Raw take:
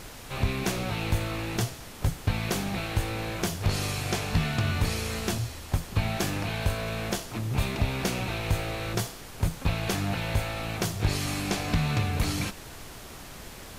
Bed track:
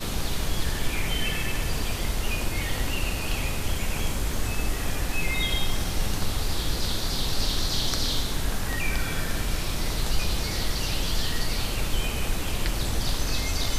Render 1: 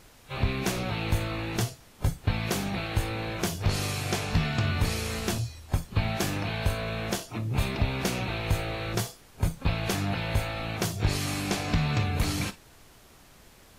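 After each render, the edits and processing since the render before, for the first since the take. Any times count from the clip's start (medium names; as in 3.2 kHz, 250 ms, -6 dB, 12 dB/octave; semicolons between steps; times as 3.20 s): noise print and reduce 11 dB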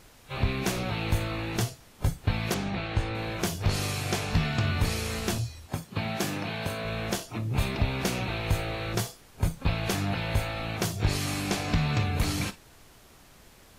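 2.54–3.15 s: distance through air 87 m; 5.67–6.85 s: Chebyshev high-pass 160 Hz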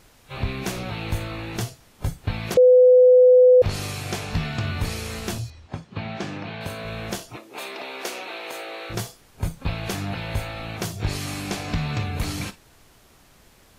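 2.57–3.62 s: bleep 503 Hz -9 dBFS; 5.50–6.61 s: distance through air 130 m; 7.36–8.90 s: high-pass 350 Hz 24 dB/octave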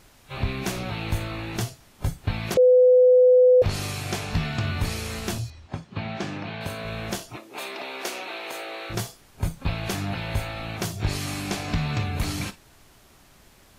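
band-stop 480 Hz, Q 12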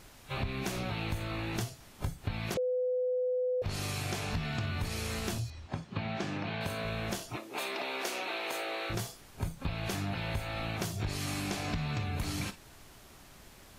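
peak limiter -17 dBFS, peak gain reduction 5.5 dB; compression 4:1, threshold -32 dBFS, peak gain reduction 10.5 dB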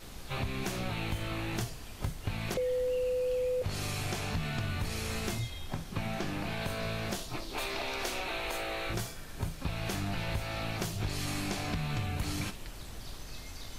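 add bed track -18 dB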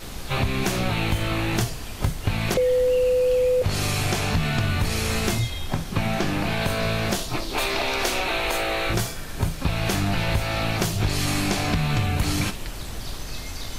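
trim +11 dB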